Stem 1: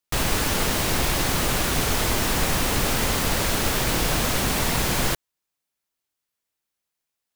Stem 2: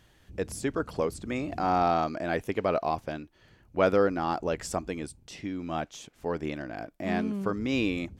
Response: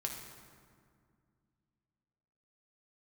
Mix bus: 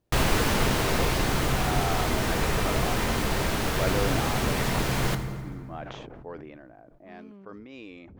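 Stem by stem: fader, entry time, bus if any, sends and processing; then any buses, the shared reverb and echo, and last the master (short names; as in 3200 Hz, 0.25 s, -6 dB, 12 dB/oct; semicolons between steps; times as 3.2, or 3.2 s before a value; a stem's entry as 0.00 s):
-0.5 dB, 0.00 s, send -6.5 dB, auto duck -9 dB, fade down 1.70 s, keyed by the second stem
6.15 s -6.5 dB -> 6.82 s -14 dB, 0.00 s, no send, low-pass opened by the level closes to 510 Hz, open at -21.5 dBFS; tone controls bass -9 dB, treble +2 dB; sustainer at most 23 dB/s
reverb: on, RT60 2.1 s, pre-delay 4 ms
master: high shelf 4300 Hz -8.5 dB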